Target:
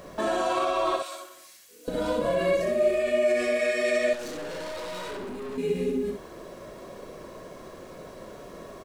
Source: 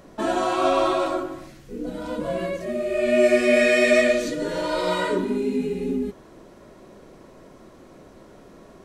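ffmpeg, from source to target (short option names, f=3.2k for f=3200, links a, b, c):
-filter_complex "[0:a]acompressor=threshold=-20dB:ratio=6,asettb=1/sr,asplit=3[a][b][c];[a]atrim=end=0.964[d];[b]atrim=start=0.96:end=1.88,asetpts=PTS-STARTPTS,afade=t=in:d=0.004:c=qsin,afade=t=out:st=0.916:d=0.004:c=qsin,aderivative[e];[c]atrim=start=1.876[f];[d][e]acrossfade=d=0.004:c1=hsin:c2=qsin[g];[g][f]acrossfade=d=0.004:c1=qsin:c2=hsin,alimiter=limit=-22.5dB:level=0:latency=1:release=106,lowshelf=f=150:g=-6.5,aecho=1:1:1.8:0.35,aecho=1:1:23|61:0.188|0.562,asettb=1/sr,asplit=3[h][i][j];[h]atrim=end=4.134[k];[i]atrim=start=4.13:end=5.58,asetpts=PTS-STARTPTS,afade=t=in:d=0.004:c=qsin,afade=t=out:st=1.446:d=0.004:c=qsin,aeval=exprs='(tanh(79.4*val(0)+0.3)-tanh(0.3))/79.4':c=same[l];[j]atrim=start=5.576[m];[k][l]acrossfade=d=0.004:c1=hsin:c2=qsin[n];[n][m]acrossfade=d=0.004:c1=qsin:c2=hsin,acrusher=bits=10:mix=0:aa=0.000001,volume=4dB"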